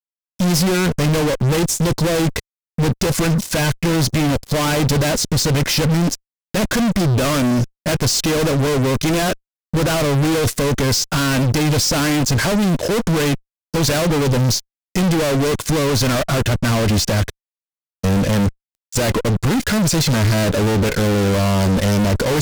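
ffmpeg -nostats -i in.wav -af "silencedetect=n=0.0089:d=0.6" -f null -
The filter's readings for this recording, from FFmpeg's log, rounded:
silence_start: 17.30
silence_end: 18.03 | silence_duration: 0.73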